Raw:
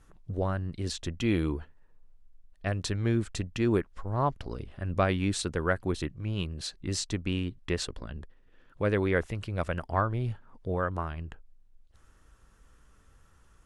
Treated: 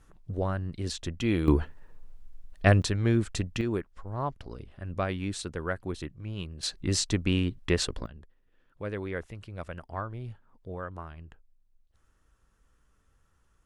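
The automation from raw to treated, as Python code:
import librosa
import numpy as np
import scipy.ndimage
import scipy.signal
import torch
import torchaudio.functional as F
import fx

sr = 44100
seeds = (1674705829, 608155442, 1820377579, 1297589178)

y = fx.gain(x, sr, db=fx.steps((0.0, 0.0), (1.48, 10.5), (2.82, 2.5), (3.61, -4.5), (6.63, 4.5), (8.06, -8.0)))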